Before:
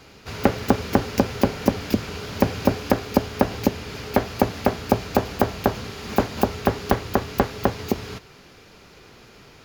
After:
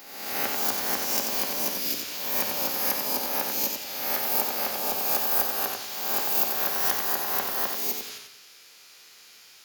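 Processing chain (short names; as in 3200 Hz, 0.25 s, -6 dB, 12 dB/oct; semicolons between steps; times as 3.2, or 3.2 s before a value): spectral swells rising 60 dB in 1.11 s; differentiator; warbling echo 90 ms, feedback 36%, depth 52 cents, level -4.5 dB; gain +3 dB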